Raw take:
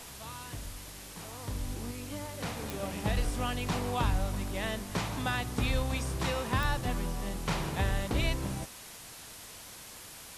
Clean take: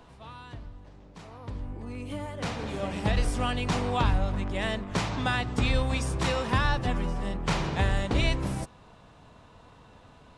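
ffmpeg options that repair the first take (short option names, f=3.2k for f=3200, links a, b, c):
-af "adeclick=t=4,afwtdn=0.005,asetnsamples=n=441:p=0,asendcmd='1.91 volume volume 4.5dB',volume=0dB"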